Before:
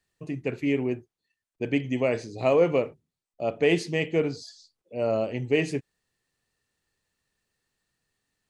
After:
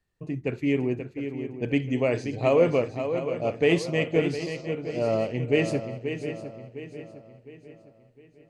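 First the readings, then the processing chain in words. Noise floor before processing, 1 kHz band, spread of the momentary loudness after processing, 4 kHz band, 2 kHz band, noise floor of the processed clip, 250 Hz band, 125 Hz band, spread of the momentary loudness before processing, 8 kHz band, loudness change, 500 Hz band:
under -85 dBFS, +1.0 dB, 15 LU, +0.5 dB, +1.0 dB, -58 dBFS, +2.0 dB, +3.5 dB, 13 LU, +0.5 dB, +0.5 dB, +1.0 dB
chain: bass shelf 95 Hz +8 dB; shuffle delay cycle 708 ms, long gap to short 3:1, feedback 42%, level -8.5 dB; tape noise reduction on one side only decoder only

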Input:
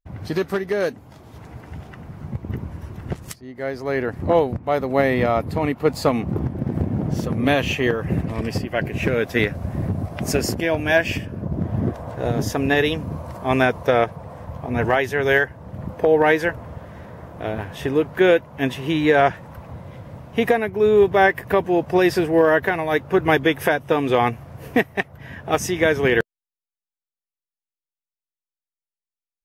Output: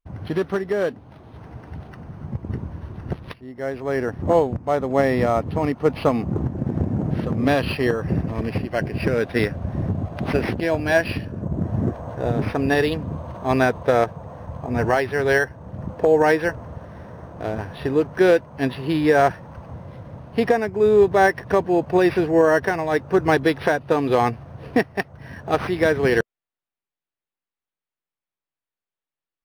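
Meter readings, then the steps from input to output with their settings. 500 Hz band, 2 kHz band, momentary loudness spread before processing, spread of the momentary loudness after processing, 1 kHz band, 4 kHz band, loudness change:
0.0 dB, -2.5 dB, 18 LU, 18 LU, -0.5 dB, -4.5 dB, -0.5 dB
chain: peaking EQ 2.2 kHz -4 dB 0.31 oct; decimation joined by straight lines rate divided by 6×

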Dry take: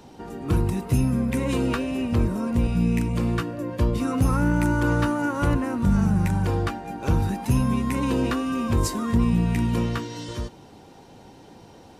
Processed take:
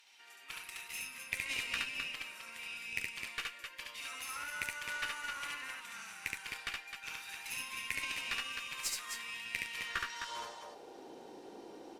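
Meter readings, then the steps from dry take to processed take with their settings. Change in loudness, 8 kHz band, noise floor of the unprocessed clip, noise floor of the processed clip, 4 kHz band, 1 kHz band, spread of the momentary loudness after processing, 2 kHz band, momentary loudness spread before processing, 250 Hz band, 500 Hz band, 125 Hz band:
-15.5 dB, -4.5 dB, -48 dBFS, -54 dBFS, -1.0 dB, -15.0 dB, 14 LU, -3.5 dB, 7 LU, -36.0 dB, -25.0 dB, under -40 dB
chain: high-pass sweep 2.3 kHz -> 350 Hz, 9.72–11.01 s; loudspeakers at several distances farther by 24 m -2 dB, 89 m -6 dB; Chebyshev shaper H 3 -20 dB, 6 -24 dB, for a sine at -12 dBFS; trim -5.5 dB

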